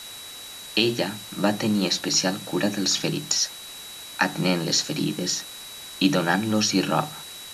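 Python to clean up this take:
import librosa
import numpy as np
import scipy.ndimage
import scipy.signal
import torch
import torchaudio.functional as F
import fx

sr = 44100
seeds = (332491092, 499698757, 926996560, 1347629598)

y = fx.notch(x, sr, hz=3900.0, q=30.0)
y = fx.noise_reduce(y, sr, print_start_s=3.69, print_end_s=4.19, reduce_db=30.0)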